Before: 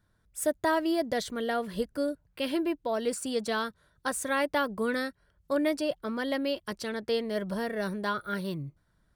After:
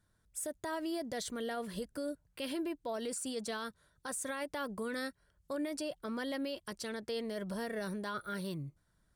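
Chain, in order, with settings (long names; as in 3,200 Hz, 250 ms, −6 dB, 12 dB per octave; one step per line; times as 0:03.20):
parametric band 8,400 Hz +7.5 dB 1.3 octaves
brickwall limiter −25.5 dBFS, peak gain reduction 10.5 dB
level −4.5 dB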